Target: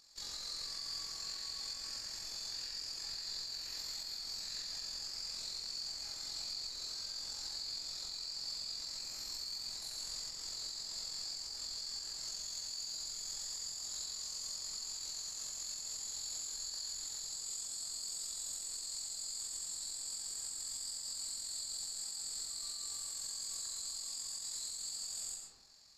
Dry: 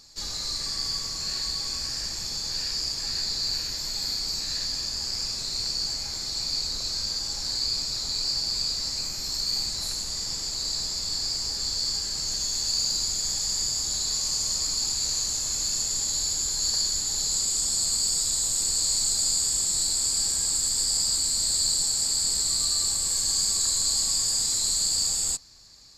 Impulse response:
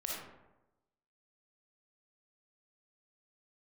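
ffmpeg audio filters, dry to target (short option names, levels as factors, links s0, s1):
-filter_complex "[0:a]lowshelf=f=370:g=-10.5,tremolo=f=44:d=0.621,equalizer=f=5800:t=o:w=0.44:g=-2.5,asplit=2[s0][s1];[1:a]atrim=start_sample=2205,adelay=35[s2];[s1][s2]afir=irnorm=-1:irlink=0,volume=0.668[s3];[s0][s3]amix=inputs=2:normalize=0,alimiter=limit=0.0631:level=0:latency=1:release=260,volume=0.398"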